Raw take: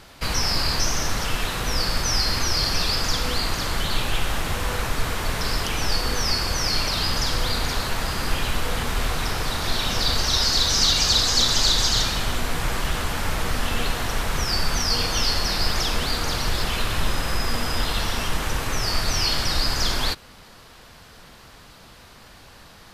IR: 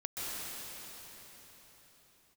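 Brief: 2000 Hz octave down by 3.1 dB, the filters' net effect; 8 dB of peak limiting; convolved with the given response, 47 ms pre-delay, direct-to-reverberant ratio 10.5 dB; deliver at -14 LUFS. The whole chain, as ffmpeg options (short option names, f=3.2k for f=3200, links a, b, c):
-filter_complex "[0:a]equalizer=f=2k:t=o:g=-4,alimiter=limit=-14.5dB:level=0:latency=1,asplit=2[a][b];[1:a]atrim=start_sample=2205,adelay=47[c];[b][c]afir=irnorm=-1:irlink=0,volume=-15dB[d];[a][d]amix=inputs=2:normalize=0,volume=11dB"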